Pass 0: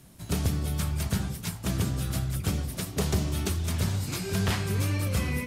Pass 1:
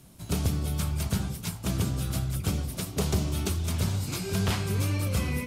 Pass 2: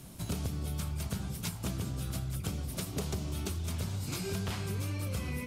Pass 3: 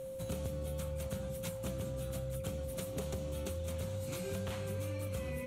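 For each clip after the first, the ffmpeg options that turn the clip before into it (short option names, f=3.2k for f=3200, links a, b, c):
-af "equalizer=f=1.8k:w=4.4:g=-5"
-af "acompressor=threshold=-37dB:ratio=6,volume=4dB"
-af "equalizer=f=5k:w=4.8:g=-10,aeval=exprs='val(0)+0.0158*sin(2*PI*530*n/s)':c=same,volume=-5dB"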